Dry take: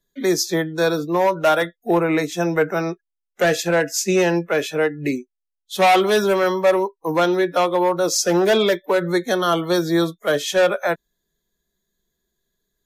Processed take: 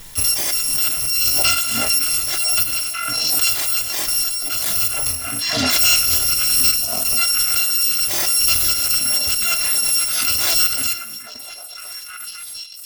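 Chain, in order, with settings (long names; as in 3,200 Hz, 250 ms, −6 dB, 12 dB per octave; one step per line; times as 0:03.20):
samples in bit-reversed order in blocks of 256 samples
parametric band 120 Hz +5.5 dB 1.1 octaves
echo through a band-pass that steps 499 ms, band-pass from 230 Hz, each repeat 1.4 octaves, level −2 dB
on a send at −12 dB: convolution reverb RT60 0.70 s, pre-delay 32 ms
0:03.73–0:04.66: on the sum: power curve on the samples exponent 1.4
in parallel at −10 dB: bit reduction 5 bits
on the sum: background raised ahead of every attack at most 21 dB per second
level −3.5 dB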